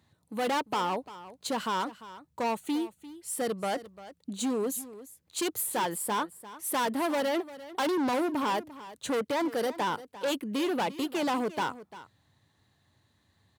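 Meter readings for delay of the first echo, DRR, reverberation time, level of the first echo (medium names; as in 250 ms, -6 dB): 347 ms, no reverb, no reverb, -16.0 dB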